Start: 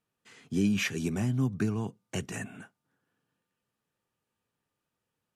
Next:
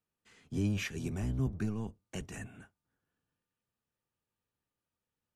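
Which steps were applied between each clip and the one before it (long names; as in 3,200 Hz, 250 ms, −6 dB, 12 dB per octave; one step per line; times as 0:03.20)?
sub-octave generator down 1 octave, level −1 dB
level −7.5 dB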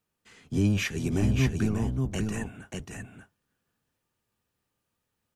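single-tap delay 587 ms −4 dB
level +7.5 dB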